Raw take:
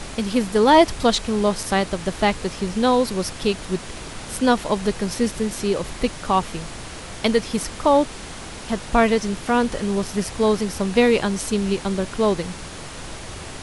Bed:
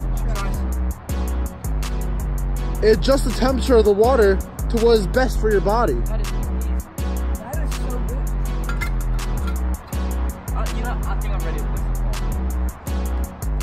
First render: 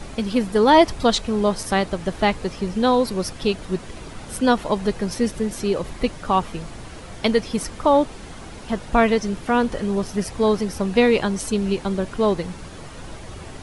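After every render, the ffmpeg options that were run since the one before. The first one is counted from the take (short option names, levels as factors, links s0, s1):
-af "afftdn=nr=8:nf=-36"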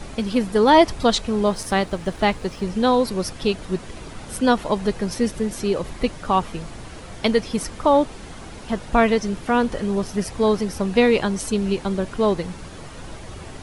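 -filter_complex "[0:a]asettb=1/sr,asplit=3[s0][s1][s2];[s0]atrim=end=1.434[s3];[s1]atrim=start=1.43:end=2.65,asetpts=PTS-STARTPTS,afade=t=in:d=0.004:c=qsin,afade=t=out:st=1.216:d=0.004:c=qsin,aeval=exprs='sgn(val(0))*max(abs(val(0))-0.00316,0)':c=same[s4];[s2]atrim=start=2.646[s5];[s3][s4]acrossfade=d=0.004:c1=hsin:c2=qsin[s6];[s6][s5]acrossfade=d=0.004:c1=qsin:c2=hsin"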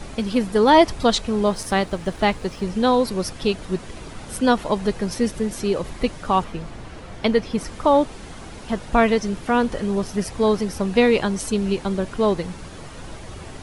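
-filter_complex "[0:a]asettb=1/sr,asplit=3[s0][s1][s2];[s0]atrim=end=6.444[s3];[s1]atrim=start=6.44:end=7.67,asetpts=PTS-STARTPTS,afade=t=in:d=0.004:c=qsin,afade=t=out:st=1.226:d=0.004:c=qsin,aemphasis=mode=reproduction:type=cd[s4];[s2]atrim=start=7.666[s5];[s3][s4]acrossfade=d=0.004:c1=hsin:c2=qsin[s6];[s6][s5]acrossfade=d=0.004:c1=qsin:c2=hsin"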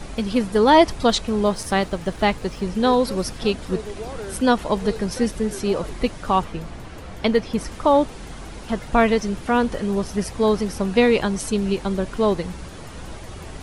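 -filter_complex "[1:a]volume=0.112[s0];[0:a][s0]amix=inputs=2:normalize=0"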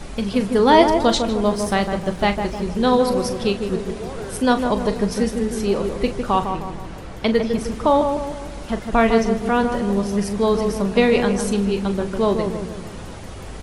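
-filter_complex "[0:a]asplit=2[s0][s1];[s1]adelay=40,volume=0.282[s2];[s0][s2]amix=inputs=2:normalize=0,asplit=2[s3][s4];[s4]adelay=154,lowpass=f=1200:p=1,volume=0.562,asplit=2[s5][s6];[s6]adelay=154,lowpass=f=1200:p=1,volume=0.53,asplit=2[s7][s8];[s8]adelay=154,lowpass=f=1200:p=1,volume=0.53,asplit=2[s9][s10];[s10]adelay=154,lowpass=f=1200:p=1,volume=0.53,asplit=2[s11][s12];[s12]adelay=154,lowpass=f=1200:p=1,volume=0.53,asplit=2[s13][s14];[s14]adelay=154,lowpass=f=1200:p=1,volume=0.53,asplit=2[s15][s16];[s16]adelay=154,lowpass=f=1200:p=1,volume=0.53[s17];[s5][s7][s9][s11][s13][s15][s17]amix=inputs=7:normalize=0[s18];[s3][s18]amix=inputs=2:normalize=0"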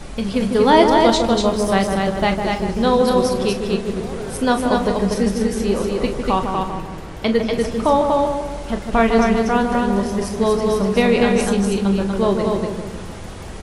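-filter_complex "[0:a]asplit=2[s0][s1];[s1]adelay=26,volume=0.251[s2];[s0][s2]amix=inputs=2:normalize=0,aecho=1:1:241:0.668"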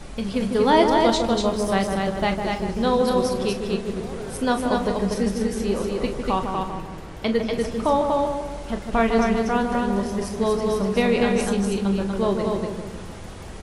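-af "volume=0.596"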